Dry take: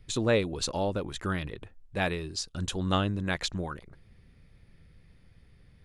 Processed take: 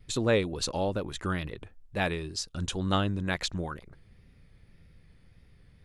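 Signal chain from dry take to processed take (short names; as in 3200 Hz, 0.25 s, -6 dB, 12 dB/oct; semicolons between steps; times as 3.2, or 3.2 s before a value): wow and flutter 46 cents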